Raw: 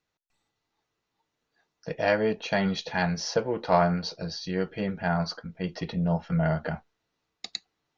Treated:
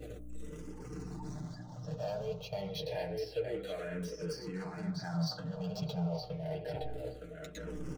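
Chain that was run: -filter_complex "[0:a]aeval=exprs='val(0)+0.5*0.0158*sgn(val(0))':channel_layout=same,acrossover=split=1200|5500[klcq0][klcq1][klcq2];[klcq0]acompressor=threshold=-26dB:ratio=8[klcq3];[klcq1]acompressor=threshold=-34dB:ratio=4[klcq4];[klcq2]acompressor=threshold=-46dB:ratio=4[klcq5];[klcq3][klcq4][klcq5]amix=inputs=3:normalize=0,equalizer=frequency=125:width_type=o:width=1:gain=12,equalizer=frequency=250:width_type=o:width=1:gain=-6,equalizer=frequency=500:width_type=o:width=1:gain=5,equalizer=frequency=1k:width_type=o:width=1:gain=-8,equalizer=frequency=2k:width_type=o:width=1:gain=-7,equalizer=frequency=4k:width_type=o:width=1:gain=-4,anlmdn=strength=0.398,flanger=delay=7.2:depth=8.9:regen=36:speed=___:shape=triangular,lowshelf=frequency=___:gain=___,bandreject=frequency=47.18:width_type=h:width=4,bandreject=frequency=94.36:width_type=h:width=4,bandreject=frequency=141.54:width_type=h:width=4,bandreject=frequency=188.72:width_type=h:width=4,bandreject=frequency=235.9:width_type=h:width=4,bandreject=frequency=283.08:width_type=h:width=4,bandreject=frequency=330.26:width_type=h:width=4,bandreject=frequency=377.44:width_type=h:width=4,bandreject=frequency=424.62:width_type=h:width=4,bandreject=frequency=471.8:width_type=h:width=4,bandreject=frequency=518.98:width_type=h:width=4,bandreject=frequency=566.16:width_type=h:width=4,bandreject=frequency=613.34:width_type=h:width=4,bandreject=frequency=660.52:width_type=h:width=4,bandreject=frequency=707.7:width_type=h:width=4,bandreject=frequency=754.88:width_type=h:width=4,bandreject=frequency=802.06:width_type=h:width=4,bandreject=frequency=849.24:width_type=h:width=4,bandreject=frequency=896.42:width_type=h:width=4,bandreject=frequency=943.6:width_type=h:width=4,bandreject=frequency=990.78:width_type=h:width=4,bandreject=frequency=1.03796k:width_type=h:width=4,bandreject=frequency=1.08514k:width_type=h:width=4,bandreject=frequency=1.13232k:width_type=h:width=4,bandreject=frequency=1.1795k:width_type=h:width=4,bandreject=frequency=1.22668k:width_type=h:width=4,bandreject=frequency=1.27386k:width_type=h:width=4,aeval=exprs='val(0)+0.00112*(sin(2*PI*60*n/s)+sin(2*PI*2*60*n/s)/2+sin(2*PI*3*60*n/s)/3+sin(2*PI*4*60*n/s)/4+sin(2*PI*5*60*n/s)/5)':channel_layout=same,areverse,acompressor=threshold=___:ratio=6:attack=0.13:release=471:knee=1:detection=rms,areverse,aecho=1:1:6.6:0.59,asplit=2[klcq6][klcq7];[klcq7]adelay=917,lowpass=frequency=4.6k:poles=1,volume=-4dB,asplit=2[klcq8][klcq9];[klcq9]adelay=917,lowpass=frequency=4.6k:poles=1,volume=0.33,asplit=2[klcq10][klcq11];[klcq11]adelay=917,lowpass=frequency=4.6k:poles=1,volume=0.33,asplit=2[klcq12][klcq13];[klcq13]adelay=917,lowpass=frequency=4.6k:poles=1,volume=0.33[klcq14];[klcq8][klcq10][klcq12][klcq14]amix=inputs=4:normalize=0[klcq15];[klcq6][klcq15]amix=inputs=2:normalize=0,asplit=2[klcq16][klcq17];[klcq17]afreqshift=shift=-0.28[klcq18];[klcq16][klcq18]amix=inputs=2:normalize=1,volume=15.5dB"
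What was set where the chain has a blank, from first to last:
1.2, 270, -12, -48dB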